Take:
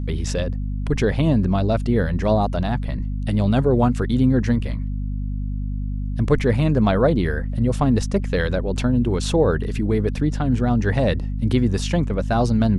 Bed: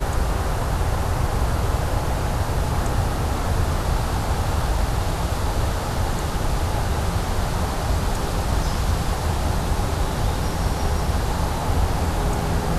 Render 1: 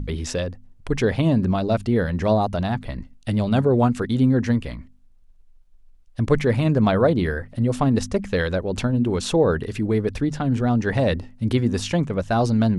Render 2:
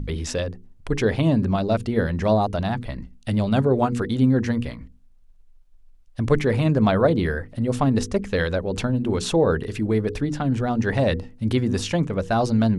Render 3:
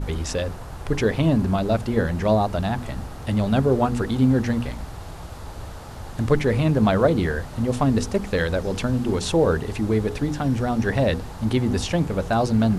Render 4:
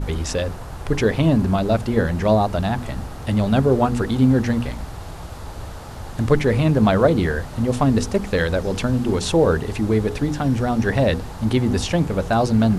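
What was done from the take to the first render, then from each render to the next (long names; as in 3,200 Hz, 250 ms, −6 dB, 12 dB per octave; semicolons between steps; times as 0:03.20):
hum removal 50 Hz, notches 5
mains-hum notches 60/120/180/240/300/360/420/480 Hz
mix in bed −13.5 dB
level +2.5 dB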